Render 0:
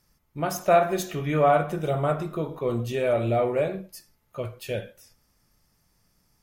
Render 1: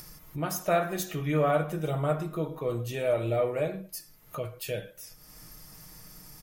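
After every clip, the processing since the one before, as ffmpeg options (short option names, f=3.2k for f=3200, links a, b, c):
-af "highshelf=f=9.1k:g=9,aecho=1:1:6.4:0.53,acompressor=mode=upward:threshold=-26dB:ratio=2.5,volume=-5dB"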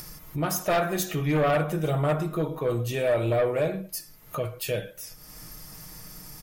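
-af "aeval=exprs='0.224*sin(PI/2*2.24*val(0)/0.224)':c=same,volume=-5.5dB"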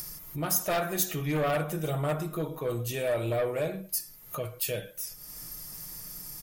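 -af "highshelf=f=5.6k:g=11,volume=-5dB"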